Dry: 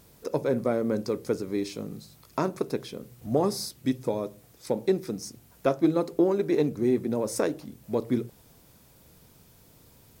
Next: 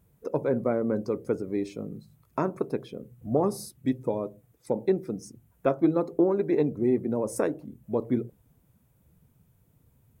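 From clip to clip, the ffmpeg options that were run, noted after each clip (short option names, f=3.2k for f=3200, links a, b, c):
-af "afftdn=nr=13:nf=-46,equalizer=f=4.8k:w=1.3:g=-11.5"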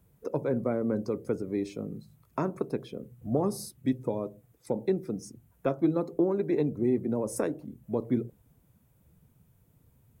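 -filter_complex "[0:a]acrossover=split=270|3000[a][b][c];[b]acompressor=threshold=-34dB:ratio=1.5[d];[a][d][c]amix=inputs=3:normalize=0"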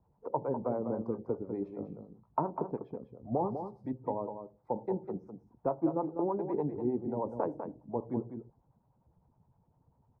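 -filter_complex "[0:a]lowpass=f=890:t=q:w=5.3,acrossover=split=490[a][b];[a]aeval=exprs='val(0)*(1-0.7/2+0.7/2*cos(2*PI*9.9*n/s))':c=same[c];[b]aeval=exprs='val(0)*(1-0.7/2-0.7/2*cos(2*PI*9.9*n/s))':c=same[d];[c][d]amix=inputs=2:normalize=0,aecho=1:1:199:0.398,volume=-4dB"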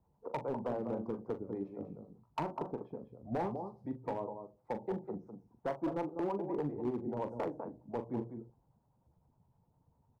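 -filter_complex "[0:a]volume=26.5dB,asoftclip=hard,volume=-26.5dB,asplit=2[a][b];[b]adelay=41,volume=-10dB[c];[a][c]amix=inputs=2:normalize=0,volume=-3dB"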